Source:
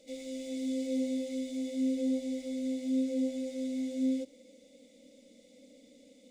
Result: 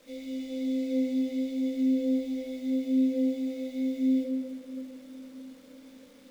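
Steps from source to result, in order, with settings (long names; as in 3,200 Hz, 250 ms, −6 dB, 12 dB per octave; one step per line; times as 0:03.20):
low-pass filter 4,600 Hz 12 dB per octave
bit-depth reduction 10 bits, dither none
rectangular room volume 140 cubic metres, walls hard, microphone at 0.36 metres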